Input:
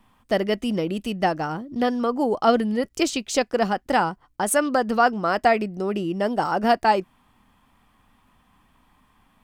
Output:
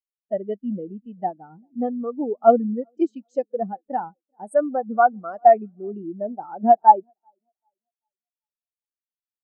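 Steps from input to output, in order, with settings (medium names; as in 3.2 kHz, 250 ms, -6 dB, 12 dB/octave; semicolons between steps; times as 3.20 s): tape echo 389 ms, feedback 56%, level -17.5 dB, low-pass 2.2 kHz; spectral contrast expander 2.5:1; trim +4.5 dB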